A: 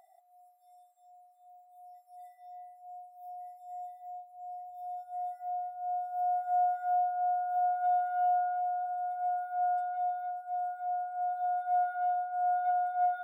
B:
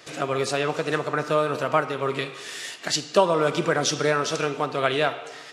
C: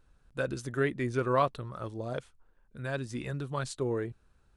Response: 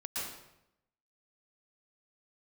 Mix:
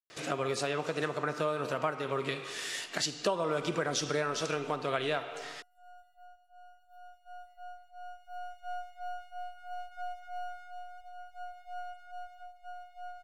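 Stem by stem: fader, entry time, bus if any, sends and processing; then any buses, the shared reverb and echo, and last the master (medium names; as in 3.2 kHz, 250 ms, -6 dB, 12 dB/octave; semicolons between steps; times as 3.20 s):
-7.0 dB, 2.15 s, send -8.5 dB, partial rectifier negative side -12 dB; reverb removal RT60 0.74 s; band-stop 750 Hz, Q 12
-2.5 dB, 0.10 s, no send, compression 2.5:1, threshold -28 dBFS, peak gain reduction 10.5 dB
mute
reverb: on, RT60 0.85 s, pre-delay 108 ms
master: none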